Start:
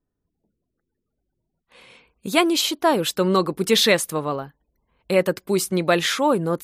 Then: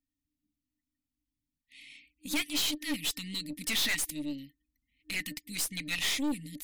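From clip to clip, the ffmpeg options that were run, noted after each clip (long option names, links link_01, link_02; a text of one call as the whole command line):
ffmpeg -i in.wav -af "afftfilt=real='re*(1-between(b*sr/4096,310,1800))':imag='im*(1-between(b*sr/4096,310,1800))':win_size=4096:overlap=0.75,lowshelf=frequency=260:width_type=q:width=3:gain=-10,aeval=exprs='(tanh(22.4*val(0)+0.45)-tanh(0.45))/22.4':channel_layout=same" out.wav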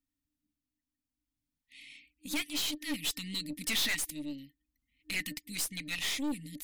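ffmpeg -i in.wav -af "tremolo=f=0.58:d=0.32" out.wav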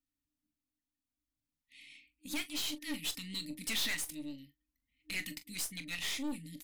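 ffmpeg -i in.wav -af "aecho=1:1:23|42:0.211|0.2,volume=-4dB" out.wav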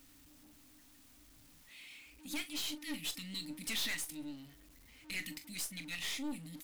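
ffmpeg -i in.wav -af "aeval=exprs='val(0)+0.5*0.00299*sgn(val(0))':channel_layout=same,volume=-3dB" out.wav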